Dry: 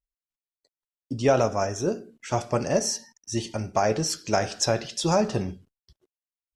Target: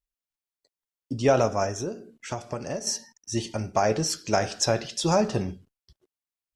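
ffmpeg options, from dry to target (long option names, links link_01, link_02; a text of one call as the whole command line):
ffmpeg -i in.wav -filter_complex "[0:a]asettb=1/sr,asplit=3[link_01][link_02][link_03];[link_01]atrim=end=1.704[link_04];[link_02]atrim=start=1.7:end=2.87,asetpts=PTS-STARTPTS,afade=type=in:duration=0.004:curve=qsin,afade=type=out:start_time=1.166:duration=0.004:curve=qsin,acompressor=threshold=-28dB:ratio=10[link_05];[link_03]atrim=start=2.866[link_06];[link_04][link_05]acrossfade=duration=0.004:curve1=hsin:curve2=qsin[link_07];[link_07][link_06]acrossfade=duration=0.004:curve1=qsin:curve2=hsin" out.wav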